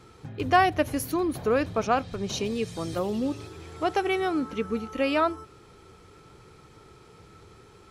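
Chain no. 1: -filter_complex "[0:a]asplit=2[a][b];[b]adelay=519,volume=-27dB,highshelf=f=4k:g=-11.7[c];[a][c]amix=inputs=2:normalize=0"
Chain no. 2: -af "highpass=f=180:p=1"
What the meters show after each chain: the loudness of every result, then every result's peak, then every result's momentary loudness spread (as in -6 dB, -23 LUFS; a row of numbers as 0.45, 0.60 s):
-27.0, -27.5 LUFS; -8.0, -9.0 dBFS; 9, 10 LU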